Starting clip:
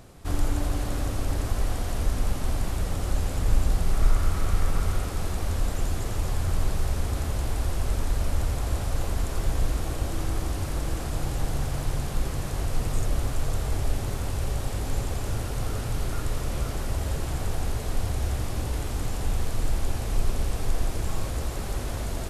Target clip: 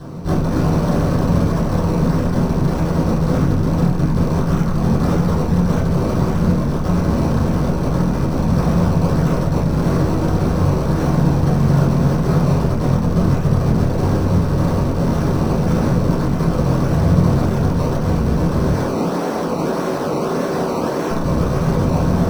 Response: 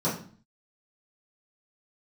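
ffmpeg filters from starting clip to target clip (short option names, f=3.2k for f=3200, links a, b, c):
-filter_complex "[0:a]asettb=1/sr,asplit=3[a][b][c];[a]atrim=end=18.744[d];[b]atrim=start=18.74:end=21.11,asetpts=PTS-STARTPTS,afade=t=in:d=0.004:c=qsin,afade=t=out:st=2.366:d=0.004:c=qsin,highpass=f=270:w=0.5412,highpass=f=270:w=1.3066[e];[c]atrim=start=21.106[f];[d][e]acrossfade=d=0.004:c1=hsin:c2=qsin[g];[g][f]acrossfade=d=0.004:c1=qsin:c2=hsin,acrusher=samples=18:mix=1:aa=0.000001:lfo=1:lforange=18:lforate=1.7,volume=29dB,asoftclip=hard,volume=-29dB[h];[1:a]atrim=start_sample=2205[i];[h][i]afir=irnorm=-1:irlink=0,volume=3.5dB"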